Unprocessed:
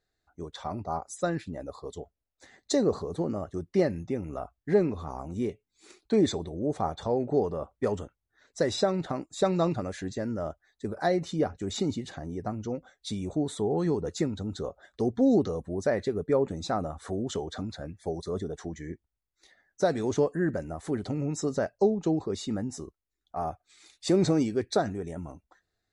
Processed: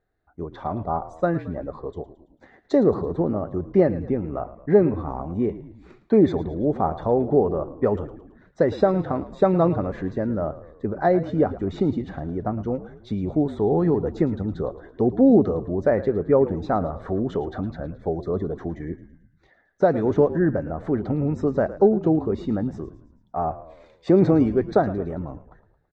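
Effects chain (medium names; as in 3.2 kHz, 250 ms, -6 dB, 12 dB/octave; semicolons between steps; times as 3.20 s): low-pass 1.5 kHz 12 dB/octave; on a send: frequency-shifting echo 110 ms, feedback 53%, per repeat -46 Hz, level -15 dB; on the sum: trim +7 dB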